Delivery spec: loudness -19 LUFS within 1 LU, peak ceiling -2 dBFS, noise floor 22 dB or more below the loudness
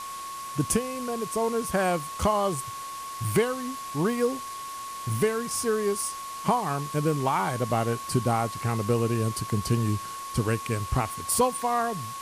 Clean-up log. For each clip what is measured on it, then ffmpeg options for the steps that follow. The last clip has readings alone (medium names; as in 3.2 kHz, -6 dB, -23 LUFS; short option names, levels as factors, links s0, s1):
steady tone 1.1 kHz; tone level -35 dBFS; noise floor -37 dBFS; noise floor target -50 dBFS; loudness -27.5 LUFS; peak level -11.5 dBFS; loudness target -19.0 LUFS
-> -af "bandreject=f=1100:w=30"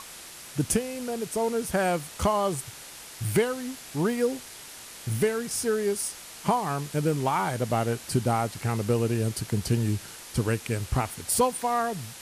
steady tone not found; noise floor -44 dBFS; noise floor target -50 dBFS
-> -af "afftdn=nr=6:nf=-44"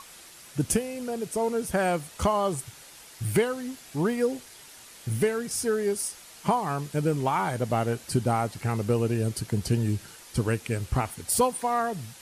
noise floor -49 dBFS; noise floor target -50 dBFS
-> -af "afftdn=nr=6:nf=-49"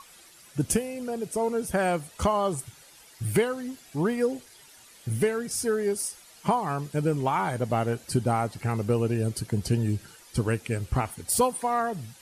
noise floor -53 dBFS; loudness -28.0 LUFS; peak level -12.0 dBFS; loudness target -19.0 LUFS
-> -af "volume=2.82"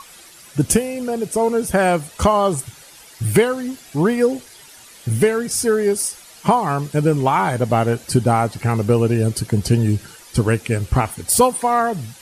loudness -19.0 LUFS; peak level -3.0 dBFS; noise floor -44 dBFS